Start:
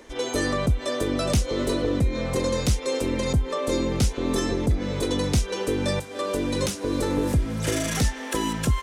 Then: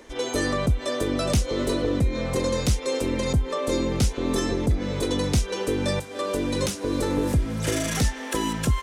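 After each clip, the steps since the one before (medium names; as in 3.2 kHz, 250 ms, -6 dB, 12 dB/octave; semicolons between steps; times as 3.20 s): no audible change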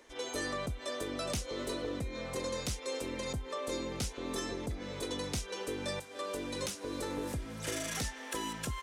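bass shelf 380 Hz -9 dB; trim -8.5 dB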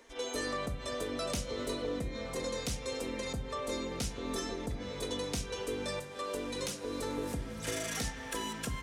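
on a send at -8 dB: Bessel low-pass 6 kHz + reverberation RT60 0.80 s, pre-delay 4 ms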